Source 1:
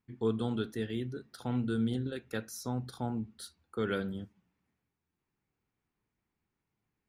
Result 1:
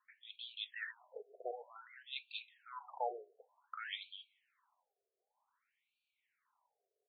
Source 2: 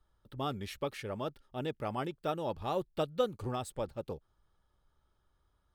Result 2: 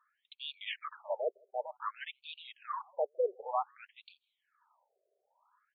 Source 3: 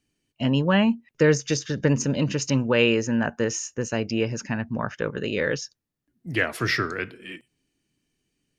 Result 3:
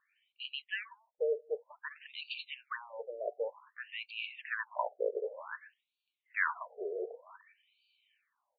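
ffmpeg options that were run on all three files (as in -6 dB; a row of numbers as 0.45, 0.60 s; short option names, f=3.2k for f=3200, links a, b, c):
-filter_complex "[0:a]areverse,acompressor=threshold=-34dB:ratio=10,areverse,highpass=380,equalizer=f=1k:w=6:g=9.5,asplit=2[a][b];[b]asoftclip=type=hard:threshold=-34.5dB,volume=-6dB[c];[a][c]amix=inputs=2:normalize=0,asplit=2[d][e];[e]adelay=160,highpass=300,lowpass=3.4k,asoftclip=type=hard:threshold=-32.5dB,volume=-29dB[f];[d][f]amix=inputs=2:normalize=0,afftfilt=real='re*between(b*sr/1024,500*pow(3300/500,0.5+0.5*sin(2*PI*0.54*pts/sr))/1.41,500*pow(3300/500,0.5+0.5*sin(2*PI*0.54*pts/sr))*1.41)':imag='im*between(b*sr/1024,500*pow(3300/500,0.5+0.5*sin(2*PI*0.54*pts/sr))/1.41,500*pow(3300/500,0.5+0.5*sin(2*PI*0.54*pts/sr))*1.41)':win_size=1024:overlap=0.75,volume=6dB"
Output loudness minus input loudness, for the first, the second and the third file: -10.5, -1.5, -14.5 LU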